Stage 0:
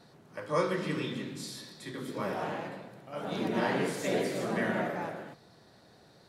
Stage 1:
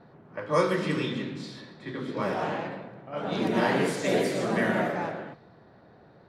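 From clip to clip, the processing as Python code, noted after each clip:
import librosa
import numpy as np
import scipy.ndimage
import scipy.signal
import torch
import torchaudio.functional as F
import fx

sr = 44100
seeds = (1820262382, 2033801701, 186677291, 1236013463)

y = fx.env_lowpass(x, sr, base_hz=1600.0, full_db=-26.5)
y = y * librosa.db_to_amplitude(5.0)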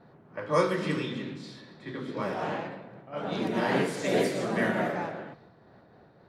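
y = fx.am_noise(x, sr, seeds[0], hz=5.7, depth_pct=50)
y = y * librosa.db_to_amplitude(1.0)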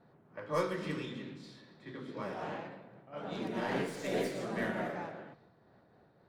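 y = fx.tracing_dist(x, sr, depth_ms=0.04)
y = y * librosa.db_to_amplitude(-8.0)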